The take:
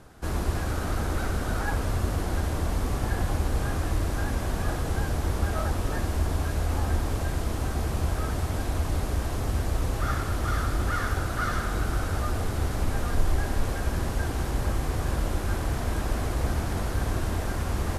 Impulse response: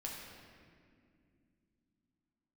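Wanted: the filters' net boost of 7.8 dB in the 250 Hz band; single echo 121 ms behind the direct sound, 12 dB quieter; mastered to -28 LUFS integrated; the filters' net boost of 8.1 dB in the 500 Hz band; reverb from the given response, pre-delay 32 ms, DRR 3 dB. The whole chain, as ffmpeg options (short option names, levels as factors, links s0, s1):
-filter_complex "[0:a]equalizer=f=250:t=o:g=7.5,equalizer=f=500:t=o:g=8,aecho=1:1:121:0.251,asplit=2[s0][s1];[1:a]atrim=start_sample=2205,adelay=32[s2];[s1][s2]afir=irnorm=-1:irlink=0,volume=0.75[s3];[s0][s3]amix=inputs=2:normalize=0,volume=0.596"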